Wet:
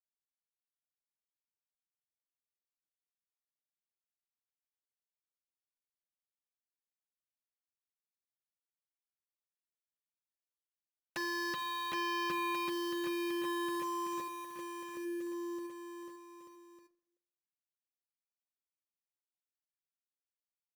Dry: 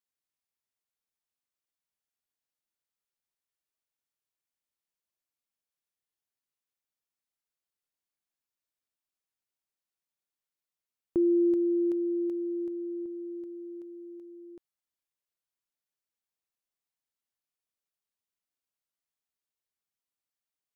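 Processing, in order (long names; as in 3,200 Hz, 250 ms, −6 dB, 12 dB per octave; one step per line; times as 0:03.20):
mu-law and A-law mismatch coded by mu
formant resonators in series e
low-shelf EQ 460 Hz −3.5 dB
in parallel at 0 dB: downward compressor 6 to 1, threshold −54 dBFS, peak gain reduction 13.5 dB
on the sum: bit reduction 11 bits
sine wavefolder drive 9 dB, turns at −37 dBFS
noise gate with hold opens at −38 dBFS
harmonic generator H 3 −7 dB, 8 −41 dB, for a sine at −36.5 dBFS
bouncing-ball delay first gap 770 ms, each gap 0.8×, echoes 5
on a send at −13 dB: convolution reverb RT60 0.75 s, pre-delay 40 ms
on the sum: level +3 dB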